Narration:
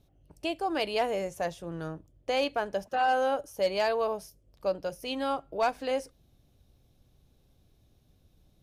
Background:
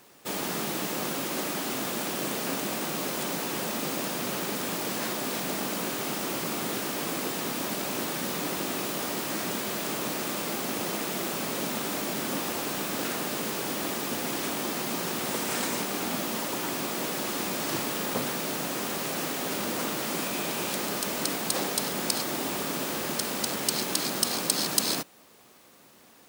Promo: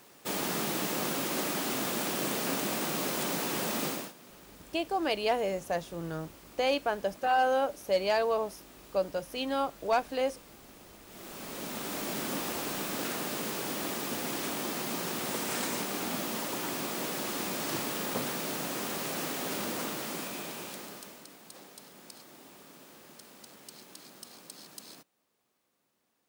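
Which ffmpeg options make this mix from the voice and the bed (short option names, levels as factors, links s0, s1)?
-filter_complex "[0:a]adelay=4300,volume=1[s0];[1:a]volume=7.5,afade=t=out:st=3.85:d=0.28:silence=0.0891251,afade=t=in:st=11.05:d=1.09:silence=0.11885,afade=t=out:st=19.6:d=1.65:silence=0.11885[s1];[s0][s1]amix=inputs=2:normalize=0"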